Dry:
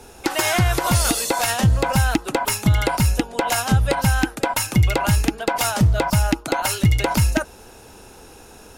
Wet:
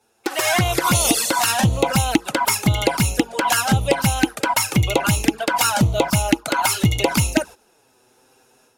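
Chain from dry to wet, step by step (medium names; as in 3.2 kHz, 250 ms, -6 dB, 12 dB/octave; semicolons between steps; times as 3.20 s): level rider gain up to 8 dB; touch-sensitive flanger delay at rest 9.8 ms, full sweep at -9 dBFS; high-pass 260 Hz 6 dB/octave; gate -33 dBFS, range -14 dB; in parallel at -9 dB: crossover distortion -39.5 dBFS; on the sum: trim -1.5 dB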